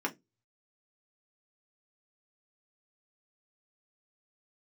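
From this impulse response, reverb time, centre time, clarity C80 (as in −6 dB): 0.15 s, 8 ms, 31.5 dB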